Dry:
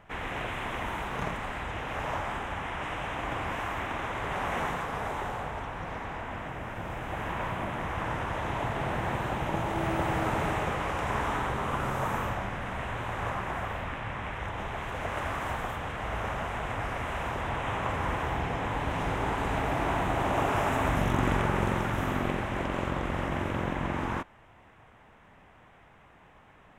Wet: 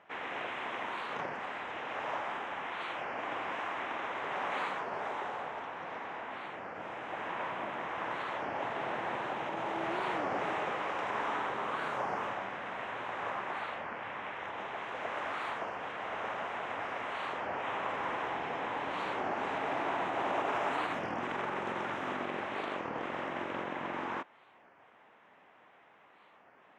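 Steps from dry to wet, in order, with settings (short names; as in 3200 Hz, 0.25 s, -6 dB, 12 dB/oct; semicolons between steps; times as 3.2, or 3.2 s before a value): limiter -19 dBFS, peak gain reduction 7 dB; BPF 320–4700 Hz; record warp 33 1/3 rpm, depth 250 cents; gain -3 dB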